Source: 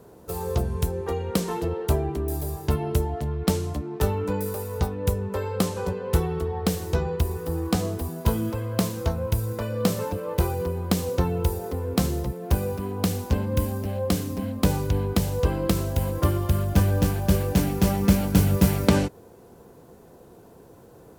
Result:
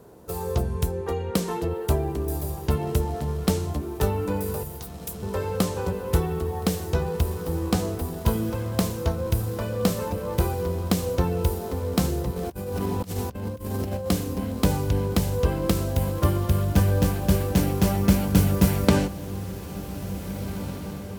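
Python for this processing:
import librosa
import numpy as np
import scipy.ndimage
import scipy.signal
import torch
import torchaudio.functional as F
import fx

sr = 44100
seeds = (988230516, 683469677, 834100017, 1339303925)

y = fx.differentiator(x, sr, at=(4.63, 5.23))
y = fx.echo_diffused(y, sr, ms=1809, feedback_pct=48, wet_db=-12.0)
y = fx.over_compress(y, sr, threshold_db=-29.0, ratio=-0.5, at=(12.36, 14.08))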